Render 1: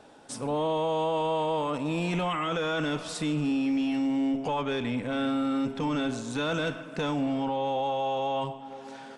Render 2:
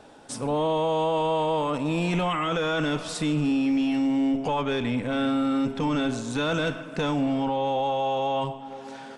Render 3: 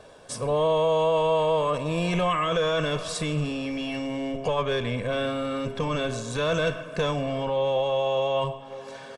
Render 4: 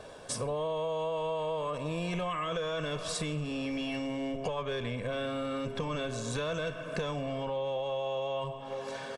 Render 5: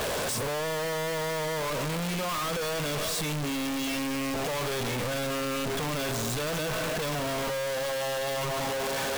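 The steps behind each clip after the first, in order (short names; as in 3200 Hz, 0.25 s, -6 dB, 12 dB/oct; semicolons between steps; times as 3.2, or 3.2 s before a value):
low shelf 70 Hz +6 dB; gain +3 dB
comb 1.8 ms, depth 64%
compressor 6:1, threshold -33 dBFS, peak gain reduction 12.5 dB; gain +1.5 dB
infinite clipping; gain +4 dB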